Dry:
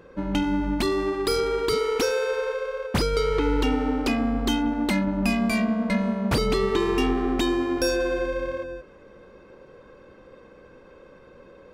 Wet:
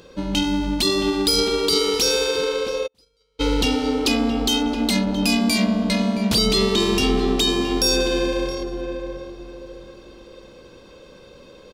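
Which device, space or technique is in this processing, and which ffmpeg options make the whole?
over-bright horn tweeter: -filter_complex "[0:a]highshelf=f=2.6k:t=q:w=1.5:g=12,alimiter=limit=-12dB:level=0:latency=1:release=18,asplit=2[a][b];[b]adelay=670,lowpass=f=1.1k:p=1,volume=-5dB,asplit=2[c][d];[d]adelay=670,lowpass=f=1.1k:p=1,volume=0.36,asplit=2[e][f];[f]adelay=670,lowpass=f=1.1k:p=1,volume=0.36,asplit=2[g][h];[h]adelay=670,lowpass=f=1.1k:p=1,volume=0.36[i];[a][c][e][g][i]amix=inputs=5:normalize=0,asplit=3[j][k][l];[j]afade=t=out:st=2.86:d=0.02[m];[k]agate=range=-47dB:threshold=-15dB:ratio=16:detection=peak,afade=t=in:st=2.86:d=0.02,afade=t=out:st=3.39:d=0.02[n];[l]afade=t=in:st=3.39:d=0.02[o];[m][n][o]amix=inputs=3:normalize=0,volume=2.5dB"

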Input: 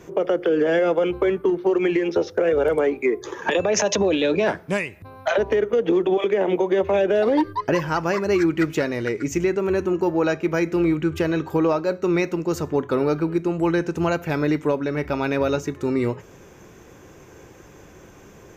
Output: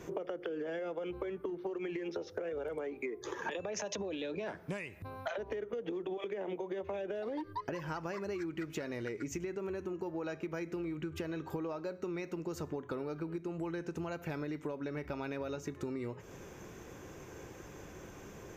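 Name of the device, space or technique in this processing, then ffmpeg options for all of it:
serial compression, leveller first: -af "acompressor=threshold=-22dB:ratio=2.5,acompressor=threshold=-33dB:ratio=6,volume=-3.5dB"

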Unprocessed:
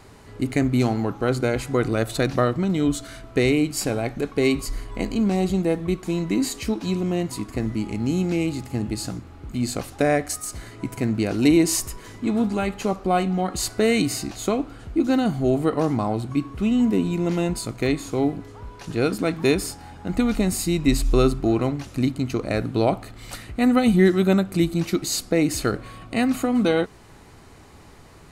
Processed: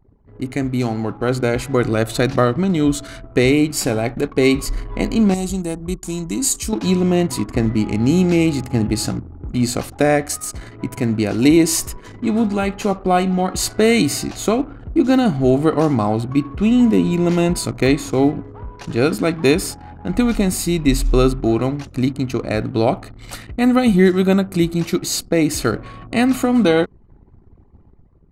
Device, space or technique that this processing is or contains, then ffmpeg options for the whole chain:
voice memo with heavy noise removal: -filter_complex "[0:a]asettb=1/sr,asplit=3[a][b][c];[a]atrim=end=5.344[d];[b]atrim=start=5.34:end=6.73,asetpts=PTS-STARTPTS,afade=t=in:d=0.004:c=qsin,afade=t=out:st=1.386:d=0.004:c=qsin,equalizer=f=125:t=o:w=1:g=-8,equalizer=f=250:t=o:w=1:g=-5,equalizer=f=500:t=o:w=1:g=-11,equalizer=f=1k:t=o:w=1:g=-4,equalizer=f=2k:t=o:w=1:g=-10,equalizer=f=4k:t=o:w=1:g=-4,equalizer=f=8k:t=o:w=1:g=8[e];[c]atrim=start=6.726[f];[d][e]acrossfade=d=0.004:c1=hsin:c2=qsin[g];[g][f]acrossfade=d=0.004:c1=qsin:c2=hsin,anlmdn=0.251,dynaudnorm=f=770:g=3:m=13dB,volume=-1dB"

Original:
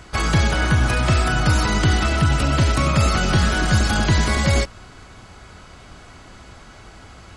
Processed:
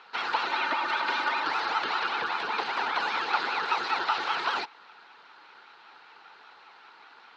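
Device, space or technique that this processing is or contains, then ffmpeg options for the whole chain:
voice changer toy: -filter_complex "[0:a]lowshelf=f=150:t=q:w=1.5:g=-10.5,aeval=exprs='val(0)*sin(2*PI*620*n/s+620*0.8/5.1*sin(2*PI*5.1*n/s))':c=same,highpass=430,equalizer=f=600:t=q:w=4:g=-9,equalizer=f=870:t=q:w=4:g=9,equalizer=f=1.4k:t=q:w=4:g=10,equalizer=f=2.7k:t=q:w=4:g=4,equalizer=f=4.1k:t=q:w=4:g=8,lowpass=f=4.5k:w=0.5412,lowpass=f=4.5k:w=1.3066,asettb=1/sr,asplit=3[a][b][c];[a]atrim=end=0.474[d];[b]atrim=start=0.47:end=1.45,asetpts=PTS-STARTPTS,afade=t=in:d=0.004:c=qsin,afade=t=out:st=0.976:d=0.004:c=qsin,aecho=1:1:3.3:0.66,atrim=end_sample=43218[e];[c]atrim=start=1.446[f];[d][e]acrossfade=d=0.004:c1=hsin:c2=qsin[g];[g][f]acrossfade=d=0.004:c1=qsin:c2=hsin,volume=-8.5dB"

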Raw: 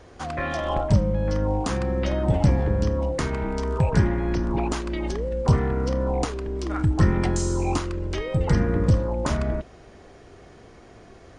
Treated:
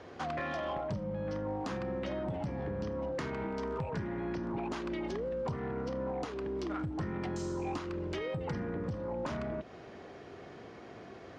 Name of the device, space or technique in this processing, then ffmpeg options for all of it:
AM radio: -af "highpass=130,lowpass=4.3k,acompressor=threshold=-32dB:ratio=6,asoftclip=type=tanh:threshold=-28dB"

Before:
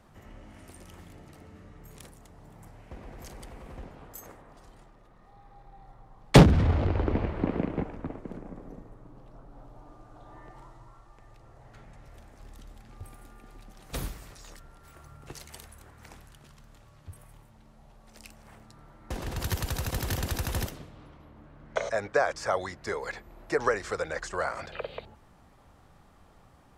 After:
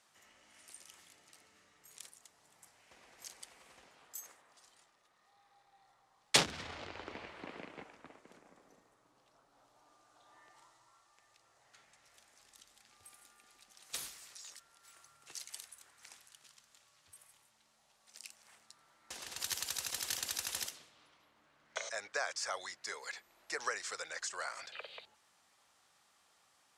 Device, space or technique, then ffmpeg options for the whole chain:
piezo pickup straight into a mixer: -af "lowpass=7.6k,aderivative,volume=5.5dB"

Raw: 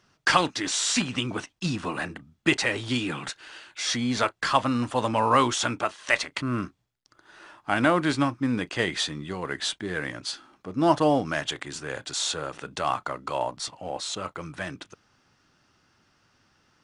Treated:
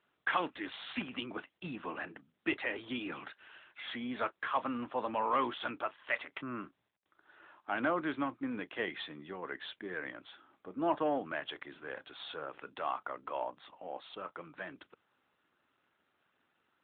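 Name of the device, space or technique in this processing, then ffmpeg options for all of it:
telephone: -af "highpass=270,lowpass=3.3k,asoftclip=type=tanh:threshold=-12.5dB,volume=-8dB" -ar 8000 -c:a libopencore_amrnb -b:a 12200

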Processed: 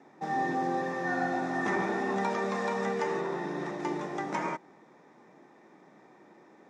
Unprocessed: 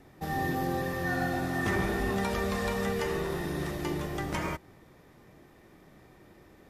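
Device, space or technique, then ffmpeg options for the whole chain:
television speaker: -filter_complex "[0:a]highpass=f=190:w=0.5412,highpass=f=190:w=1.3066,equalizer=f=880:t=q:w=4:g=7,equalizer=f=3k:t=q:w=4:g=-9,equalizer=f=4.5k:t=q:w=4:g=-8,lowpass=f=6.6k:w=0.5412,lowpass=f=6.6k:w=1.3066,asettb=1/sr,asplit=3[a][b][c];[a]atrim=end=3.214[d];[b]atrim=start=3.21:end=3.8,asetpts=PTS-STARTPTS,afade=t=in:d=0.004:c=qsin,afade=t=out:st=0.586:d=0.004:c=qsin,highshelf=f=5.2k:g=-5.5[e];[c]atrim=start=3.796[f];[d][e]acrossfade=d=0.004:c1=hsin:c2=qsin[g];[g][f]acrossfade=d=0.004:c1=qsin:c2=hsin"

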